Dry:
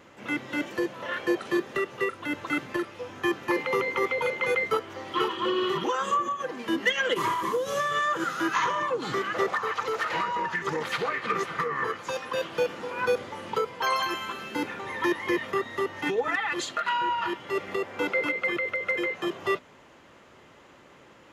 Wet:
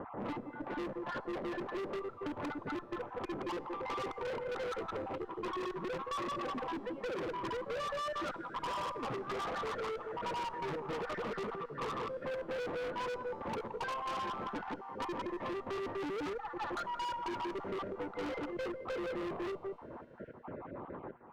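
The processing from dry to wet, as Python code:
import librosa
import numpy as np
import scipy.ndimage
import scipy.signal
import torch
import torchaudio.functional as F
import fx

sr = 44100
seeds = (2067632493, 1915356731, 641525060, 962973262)

p1 = fx.spec_dropout(x, sr, seeds[0], share_pct=36)
p2 = scipy.signal.sosfilt(scipy.signal.butter(4, 1100.0, 'lowpass', fs=sr, output='sos'), p1)
p3 = p2 + 10.0 ** (-4.5 / 20.0) * np.pad(p2, (int(171 * sr / 1000.0), 0))[:len(p2)]
p4 = fx.step_gate(p3, sr, bpm=113, pattern='xxx..xx.x.xx', floor_db=-12.0, edge_ms=4.5)
p5 = fx.over_compress(p4, sr, threshold_db=-33.0, ratio=-1.0)
p6 = p4 + F.gain(torch.from_numpy(p5), 2.5).numpy()
p7 = fx.tube_stage(p6, sr, drive_db=27.0, bias=0.5)
p8 = np.clip(p7, -10.0 ** (-32.5 / 20.0), 10.0 ** (-32.5 / 20.0))
p9 = fx.comb_fb(p8, sr, f0_hz=120.0, decay_s=1.8, harmonics='all', damping=0.0, mix_pct=40)
p10 = fx.cheby_harmonics(p9, sr, harmonics=(2,), levels_db=(-9,), full_scale_db=-32.5)
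y = fx.band_squash(p10, sr, depth_pct=70)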